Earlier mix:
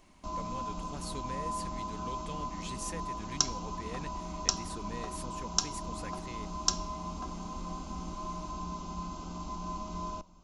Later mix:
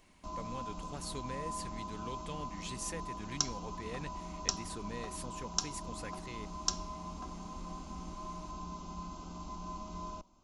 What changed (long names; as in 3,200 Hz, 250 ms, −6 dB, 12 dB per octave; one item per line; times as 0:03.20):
background −3.5 dB
reverb: off